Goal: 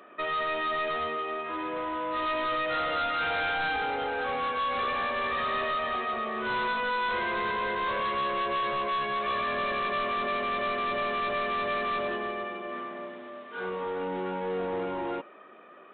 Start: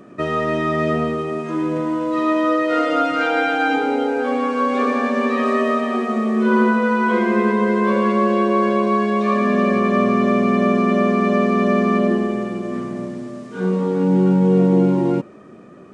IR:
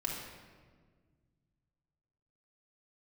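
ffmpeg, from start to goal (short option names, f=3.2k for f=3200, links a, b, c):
-af "highpass=750,aresample=8000,asoftclip=type=tanh:threshold=-26.5dB,aresample=44100"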